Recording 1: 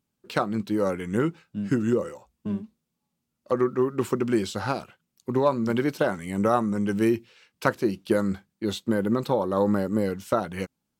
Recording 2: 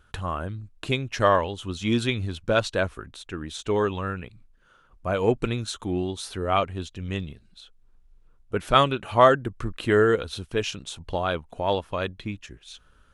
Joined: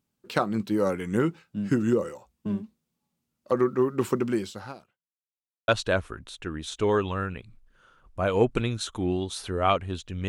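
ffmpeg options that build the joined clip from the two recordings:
ffmpeg -i cue0.wav -i cue1.wav -filter_complex "[0:a]apad=whole_dur=10.28,atrim=end=10.28,asplit=2[link_01][link_02];[link_01]atrim=end=5.19,asetpts=PTS-STARTPTS,afade=type=out:start_time=4.17:duration=1.02:curve=qua[link_03];[link_02]atrim=start=5.19:end=5.68,asetpts=PTS-STARTPTS,volume=0[link_04];[1:a]atrim=start=2.55:end=7.15,asetpts=PTS-STARTPTS,afade=type=in:duration=0.004:curve=hsin[link_05];[link_03][link_04][link_05]concat=n=3:v=0:a=1" out.wav

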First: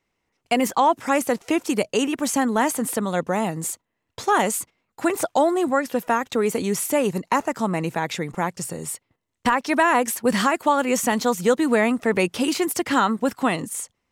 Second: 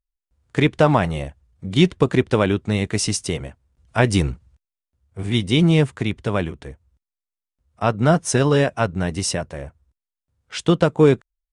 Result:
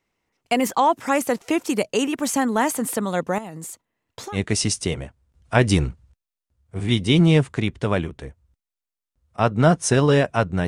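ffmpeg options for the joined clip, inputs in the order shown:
ffmpeg -i cue0.wav -i cue1.wav -filter_complex "[0:a]asettb=1/sr,asplit=3[link_01][link_02][link_03];[link_01]atrim=end=3.384[link_04];[link_02]atrim=start=3.38:end=4.38,asetpts=PTS-STARTPTS,afade=type=in:duration=0.004:curve=qsin,afade=type=out:start_time=0.996:duration=0.004:curve=qsin,acompressor=threshold=-31dB:ratio=8:attack=3.2:release=140:knee=1:detection=peak[link_05];[link_03]atrim=start=4.376[link_06];[link_04][link_05]acrossfade=duration=0.004:curve1=hsin:curve2=qsin[link_07];[link_07][link_06]acrossfade=duration=0.004:curve1=qsin:curve2=hsin,apad=whole_dur=10.67,atrim=end=10.67,atrim=end=4.38,asetpts=PTS-STARTPTS[link_08];[1:a]atrim=start=2.75:end=9.1,asetpts=PTS-STARTPTS[link_09];[link_08][link_09]acrossfade=duration=0.06:curve1=tri:curve2=tri" out.wav

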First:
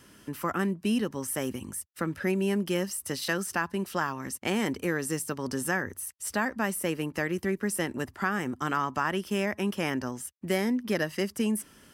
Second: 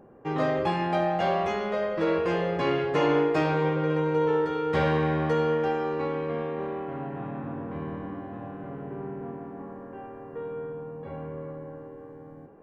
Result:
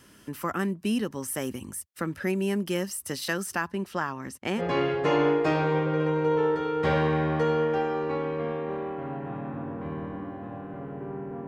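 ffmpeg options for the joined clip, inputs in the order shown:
ffmpeg -i cue0.wav -i cue1.wav -filter_complex "[0:a]asettb=1/sr,asplit=3[link_01][link_02][link_03];[link_01]atrim=end=3.704[link_04];[link_02]atrim=start=3.7:end=4.62,asetpts=PTS-STARTPTS,afade=type=in:duration=0.004:curve=qsin,afade=type=out:start_time=0.916:duration=0.004:curve=qsin,lowpass=frequency=3700:poles=1[link_05];[link_03]atrim=start=4.616[link_06];[link_04][link_05]acrossfade=duration=0.004:curve1=hsin:curve2=qsin[link_07];[link_07][link_06]acrossfade=duration=0.004:curve1=qsin:curve2=hsin,apad=whole_dur=11.47,atrim=end=11.47,atrim=end=4.62,asetpts=PTS-STARTPTS[link_08];[1:a]atrim=start=2.46:end=9.37,asetpts=PTS-STARTPTS[link_09];[link_08][link_09]acrossfade=duration=0.06:curve1=tri:curve2=tri" out.wav

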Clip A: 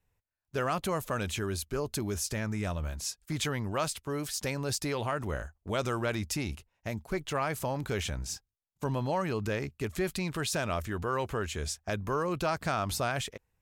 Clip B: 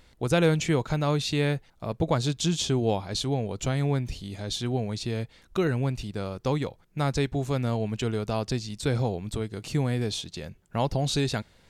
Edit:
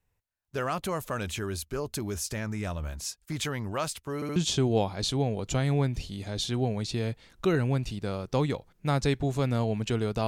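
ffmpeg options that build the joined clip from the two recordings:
ffmpeg -i cue0.wav -i cue1.wav -filter_complex "[0:a]apad=whole_dur=10.27,atrim=end=10.27,asplit=3[link_01][link_02][link_03];[link_01]atrim=end=4.222[link_04];[link_02]atrim=start=4.148:end=4.222[link_05];[link_03]atrim=start=4.148:end=4.222[link_06];[1:a]atrim=start=2.478:end=8.39[link_07];[link_04][link_05]acrossfade=duration=0.004:curve1=hsin:curve2=hsin[link_08];[link_08][link_06]acrossfade=duration=0.004:curve1=hsin:curve2=hsin[link_09];[link_09][link_07]acrossfade=duration=0.004:curve1=hsin:curve2=hsin" out.wav

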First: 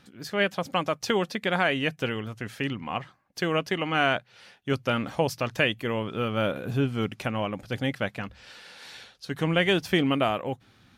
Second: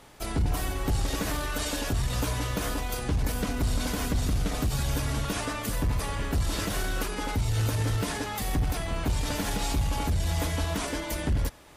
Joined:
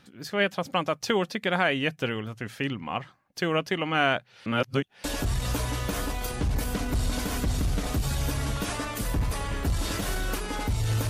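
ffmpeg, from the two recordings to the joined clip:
ffmpeg -i cue0.wav -i cue1.wav -filter_complex "[0:a]apad=whole_dur=11.09,atrim=end=11.09,asplit=2[link_01][link_02];[link_01]atrim=end=4.462[link_03];[link_02]atrim=start=4.458:end=5.042,asetpts=PTS-STARTPTS,areverse[link_04];[1:a]atrim=start=1.718:end=7.77[link_05];[link_03][link_04]acrossfade=duration=0.004:curve1=hsin:curve2=hsin[link_06];[link_06][link_05]acrossfade=duration=0.004:curve1=hsin:curve2=hsin" out.wav

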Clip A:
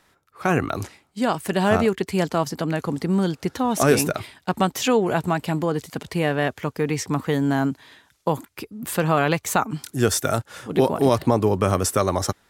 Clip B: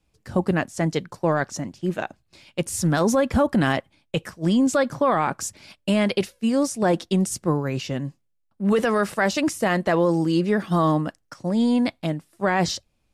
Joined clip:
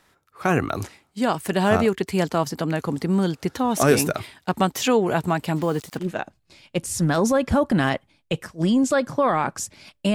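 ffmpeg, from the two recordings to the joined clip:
ffmpeg -i cue0.wav -i cue1.wav -filter_complex "[0:a]asplit=3[link_01][link_02][link_03];[link_01]afade=type=out:start_time=5.55:duration=0.02[link_04];[link_02]acrusher=bits=6:mix=0:aa=0.5,afade=type=in:start_time=5.55:duration=0.02,afade=type=out:start_time=6.09:duration=0.02[link_05];[link_03]afade=type=in:start_time=6.09:duration=0.02[link_06];[link_04][link_05][link_06]amix=inputs=3:normalize=0,apad=whole_dur=10.14,atrim=end=10.14,atrim=end=6.09,asetpts=PTS-STARTPTS[link_07];[1:a]atrim=start=1.78:end=5.97,asetpts=PTS-STARTPTS[link_08];[link_07][link_08]acrossfade=duration=0.14:curve1=tri:curve2=tri" out.wav

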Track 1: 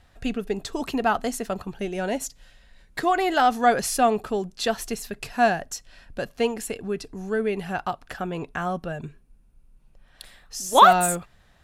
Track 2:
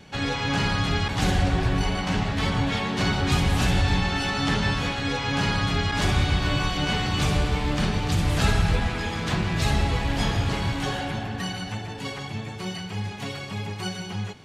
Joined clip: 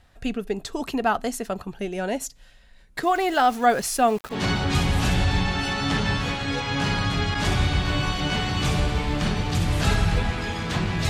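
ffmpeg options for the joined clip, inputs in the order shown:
ffmpeg -i cue0.wav -i cue1.wav -filter_complex "[0:a]asettb=1/sr,asplit=3[link_01][link_02][link_03];[link_01]atrim=end=3.034[link_04];[link_02]atrim=start=3.03:end=4.37,asetpts=PTS-STARTPTS,afade=type=in:duration=0.004:curve=qsin,afade=type=out:start_time=1.336:duration=0.004:curve=qsin,aeval=exprs='val(0)*gte(abs(val(0)),0.015)':channel_layout=same[link_05];[link_03]atrim=start=4.366[link_06];[link_04][link_05]acrossfade=duration=0.004:curve1=hsin:curve2=qsin[link_07];[link_07][link_06]acrossfade=duration=0.004:curve1=qsin:curve2=hsin,apad=whole_dur=11.09,atrim=end=11.09,atrim=end=4.37,asetpts=PTS-STARTPTS[link_08];[1:a]atrim=start=2.86:end=9.66,asetpts=PTS-STARTPTS[link_09];[link_08][link_09]acrossfade=duration=0.08:curve1=tri:curve2=tri" out.wav

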